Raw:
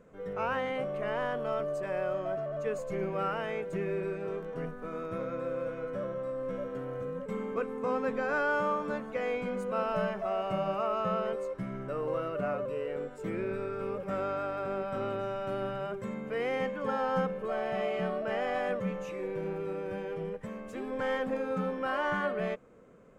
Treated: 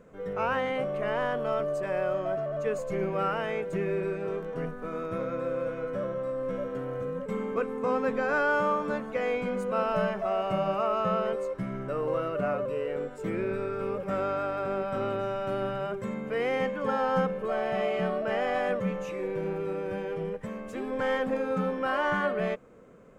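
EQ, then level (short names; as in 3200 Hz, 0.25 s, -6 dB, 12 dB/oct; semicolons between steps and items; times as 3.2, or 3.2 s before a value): none; +3.5 dB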